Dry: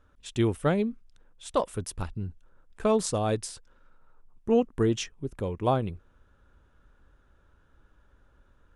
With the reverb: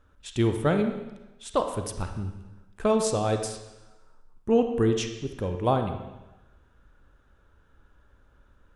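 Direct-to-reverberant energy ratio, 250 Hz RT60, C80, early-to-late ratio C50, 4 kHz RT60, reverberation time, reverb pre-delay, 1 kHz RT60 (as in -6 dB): 6.0 dB, 1.0 s, 9.0 dB, 7.0 dB, 1.0 s, 1.0 s, 33 ms, 1.0 s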